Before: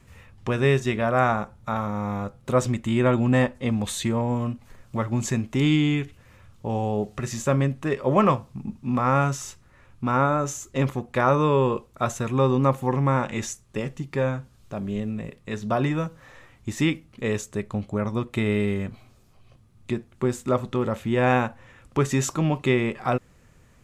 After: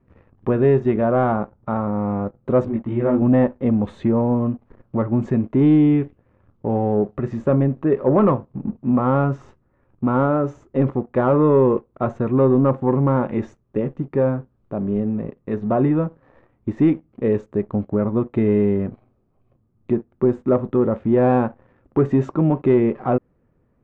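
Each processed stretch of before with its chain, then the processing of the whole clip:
0:02.65–0:03.22: low-pass filter 4,400 Hz + micro pitch shift up and down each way 27 cents
whole clip: leveller curve on the samples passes 2; low-pass filter 1,300 Hz 12 dB per octave; parametric band 330 Hz +8.5 dB 2 octaves; level −6.5 dB

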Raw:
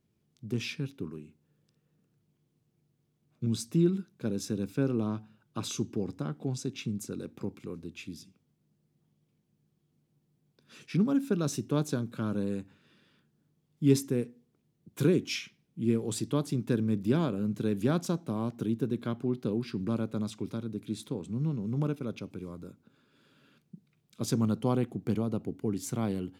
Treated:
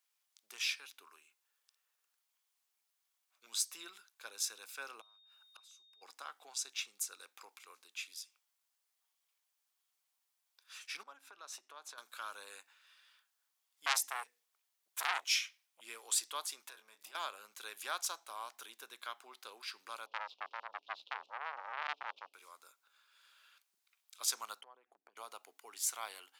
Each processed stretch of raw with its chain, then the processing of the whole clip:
0:05.00–0:06.01: gate with flip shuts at −34 dBFS, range −28 dB + steady tone 3,700 Hz −66 dBFS
0:11.03–0:11.98: high-pass filter 830 Hz 6 dB per octave + spectral tilt −4.5 dB per octave + downward compressor 4 to 1, threshold −35 dBFS
0:13.86–0:15.81: mains-hum notches 50/100/150 Hz + saturating transformer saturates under 2,700 Hz
0:16.69–0:17.15: downward compressor 16 to 1, threshold −34 dBFS + double-tracking delay 23 ms −7 dB
0:20.06–0:22.34: running median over 15 samples + drawn EQ curve 150 Hz 0 dB, 280 Hz +5 dB, 560 Hz +4 dB, 1,300 Hz −23 dB, 1,900 Hz −29 dB, 2,800 Hz +6 dB, 5,400 Hz −3 dB, 8,200 Hz −27 dB + saturating transformer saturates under 1,400 Hz
0:24.61–0:25.17: spectral envelope exaggerated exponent 1.5 + low-pass filter 2,500 Hz 6 dB per octave + downward compressor 10 to 1, threshold −38 dBFS
whole clip: high-pass filter 900 Hz 24 dB per octave; high-shelf EQ 4,900 Hz +7.5 dB

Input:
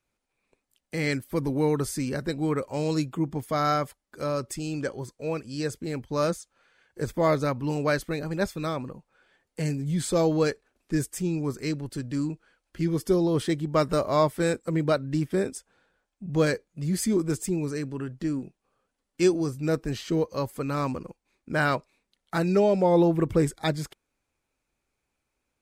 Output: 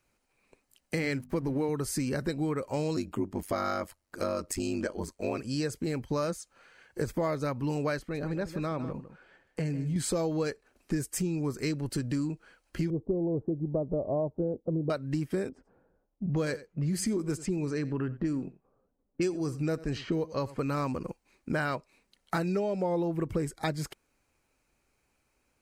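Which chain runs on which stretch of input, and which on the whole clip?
0:00.99–0:01.69: high-shelf EQ 5,500 Hz −5.5 dB + slack as between gear wheels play −45.5 dBFS + mains-hum notches 50/100/150/200/250 Hz
0:02.96–0:05.39: comb filter 3.2 ms, depth 31% + ring modulation 48 Hz
0:07.99–0:09.96: low-pass filter 2,800 Hz 6 dB per octave + downward compressor 2 to 1, threshold −37 dBFS + single-tap delay 153 ms −13 dB
0:12.90–0:14.90: Butterworth low-pass 760 Hz + one half of a high-frequency compander decoder only
0:15.49–0:20.59: low-pass that shuts in the quiet parts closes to 520 Hz, open at −22.5 dBFS + single-tap delay 89 ms −20.5 dB
whole clip: downward compressor 6 to 1, threshold −34 dBFS; notch filter 3,500 Hz, Q 9.9; level +6 dB

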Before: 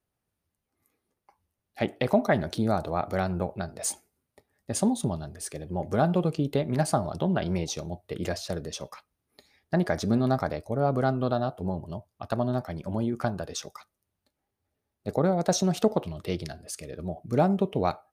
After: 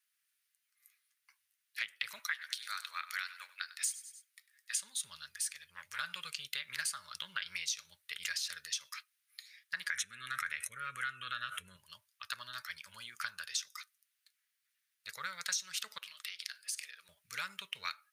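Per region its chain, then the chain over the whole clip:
0:02.19–0:04.74: high-pass filter 960 Hz + repeating echo 98 ms, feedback 41%, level −17 dB
0:05.47–0:05.99: parametric band 300 Hz −13.5 dB 0.6 octaves + saturating transformer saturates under 740 Hz
0:09.90–0:11.77: low-pass filter 11,000 Hz 24 dB per octave + phaser with its sweep stopped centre 2,000 Hz, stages 4 + envelope flattener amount 70%
0:15.98–0:17.09: high-pass filter 360 Hz + downward compressor 10 to 1, threshold −39 dBFS
whole clip: inverse Chebyshev high-pass filter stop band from 800 Hz, stop band 40 dB; downward compressor 5 to 1, threshold −41 dBFS; level +7 dB

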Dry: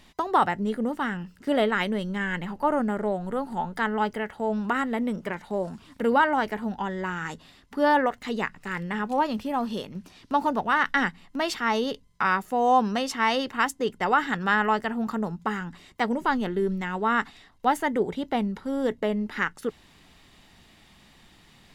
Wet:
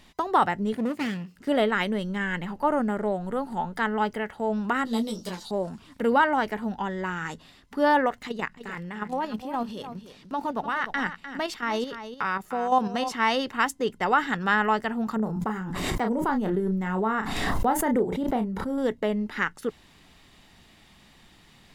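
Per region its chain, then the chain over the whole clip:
0:00.73–0:01.36: lower of the sound and its delayed copy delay 0.43 ms + high-pass filter 91 Hz 24 dB per octave + notch filter 1,600 Hz, Q 8.7
0:04.85–0:05.51: high shelf with overshoot 3,000 Hz +13 dB, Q 3 + double-tracking delay 22 ms −7 dB + string-ensemble chorus
0:08.27–0:13.12: output level in coarse steps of 9 dB + single-tap delay 301 ms −11 dB
0:15.16–0:18.78: parametric band 3,500 Hz −11 dB 2.5 octaves + double-tracking delay 32 ms −7.5 dB + background raised ahead of every attack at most 25 dB per second
whole clip: no processing

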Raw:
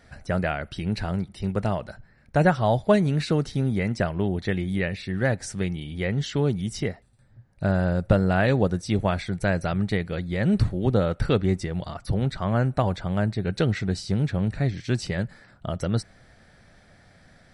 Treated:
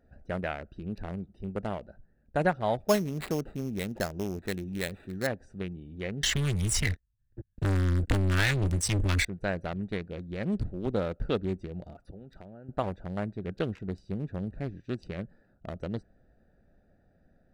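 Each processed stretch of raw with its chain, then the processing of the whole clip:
0:02.80–0:05.27: high-shelf EQ 3,000 Hz +7 dB + sample-rate reduction 5,900 Hz
0:06.23–0:09.25: drawn EQ curve 100 Hz 0 dB, 210 Hz −15 dB, 410 Hz −26 dB, 760 Hz −26 dB, 1,800 Hz −1 dB, 2,600 Hz −4 dB, 4,700 Hz −7 dB, 7,400 Hz +3 dB + leveller curve on the samples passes 5 + multiband upward and downward compressor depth 40%
0:11.95–0:12.69: spectral tilt +1.5 dB per octave + downward compressor 16 to 1, threshold −31 dBFS
whole clip: adaptive Wiener filter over 41 samples; parametric band 120 Hz −9 dB 1.2 octaves; level −4.5 dB

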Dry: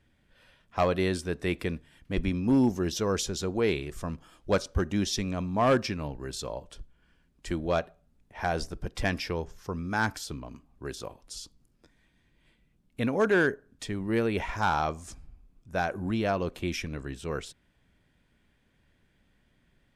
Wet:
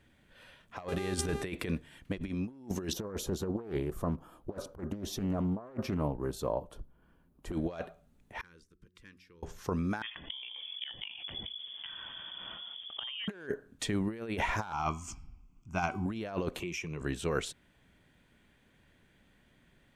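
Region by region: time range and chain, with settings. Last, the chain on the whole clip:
0:00.87–0:01.42: compressor whose output falls as the input rises −32 dBFS, ratio −0.5 + low-shelf EQ 69 Hz +11.5 dB + hum with harmonics 400 Hz, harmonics 31, −44 dBFS −7 dB per octave
0:02.93–0:07.53: flat-topped bell 3,800 Hz −13 dB 2.7 octaves + highs frequency-modulated by the lows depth 0.78 ms
0:08.38–0:09.43: hum removal 90.91 Hz, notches 4 + gate with flip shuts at −30 dBFS, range −29 dB + Butterworth band-reject 700 Hz, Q 1.1
0:10.02–0:13.28: voice inversion scrambler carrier 3,400 Hz + gate with flip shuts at −30 dBFS, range −24 dB + envelope flattener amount 70%
0:14.72–0:16.06: phaser with its sweep stopped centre 2,600 Hz, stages 8 + hum removal 252.7 Hz, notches 22
0:16.60–0:17.01: EQ curve with evenly spaced ripples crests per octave 0.75, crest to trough 12 dB + downward compressor 5 to 1, threshold −39 dBFS + high-pass filter 77 Hz
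whole clip: parametric band 5,100 Hz −5.5 dB 0.21 octaves; compressor whose output falls as the input rises −32 dBFS, ratio −0.5; low-shelf EQ 95 Hz −6.5 dB

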